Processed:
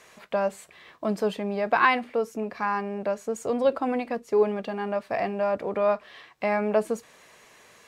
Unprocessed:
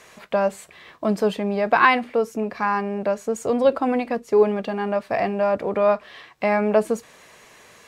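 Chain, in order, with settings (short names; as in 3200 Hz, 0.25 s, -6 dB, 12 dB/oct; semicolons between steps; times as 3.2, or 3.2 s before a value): low shelf 180 Hz -3 dB; gain -4.5 dB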